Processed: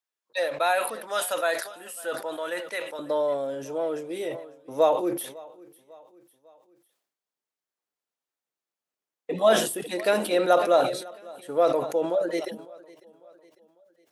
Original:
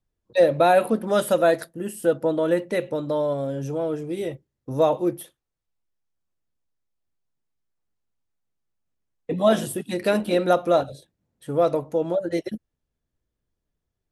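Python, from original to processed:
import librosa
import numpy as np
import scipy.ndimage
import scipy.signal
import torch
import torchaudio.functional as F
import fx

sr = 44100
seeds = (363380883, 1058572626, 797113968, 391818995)

y = fx.highpass(x, sr, hz=fx.steps((0.0, 1000.0), (2.99, 420.0)), slope=12)
y = fx.echo_feedback(y, sr, ms=550, feedback_pct=48, wet_db=-22.5)
y = fx.sustainer(y, sr, db_per_s=81.0)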